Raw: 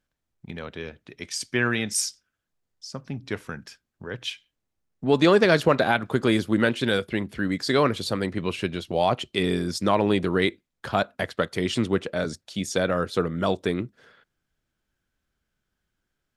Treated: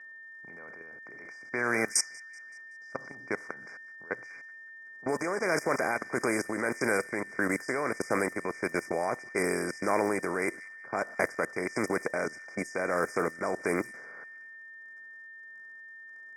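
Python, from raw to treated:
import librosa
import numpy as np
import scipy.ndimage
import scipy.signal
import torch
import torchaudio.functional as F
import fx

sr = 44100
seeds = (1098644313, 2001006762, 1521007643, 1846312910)

y = fx.bin_compress(x, sr, power=0.6)
y = fx.level_steps(y, sr, step_db=23)
y = fx.high_shelf(y, sr, hz=3900.0, db=-9.5)
y = fx.dmg_crackle(y, sr, seeds[0], per_s=79.0, level_db=-46.0)
y = fx.brickwall_bandstop(y, sr, low_hz=2400.0, high_hz=4800.0)
y = fx.echo_wet_highpass(y, sr, ms=189, feedback_pct=62, hz=3500.0, wet_db=-11)
y = y * (1.0 - 0.41 / 2.0 + 0.41 / 2.0 * np.cos(2.0 * np.pi * 1.6 * (np.arange(len(y)) / sr)))
y = y + 10.0 ** (-46.0 / 20.0) * np.sin(2.0 * np.pi * 1800.0 * np.arange(len(y)) / sr)
y = fx.env_lowpass(y, sr, base_hz=2100.0, full_db=-21.5)
y = fx.riaa(y, sr, side='recording')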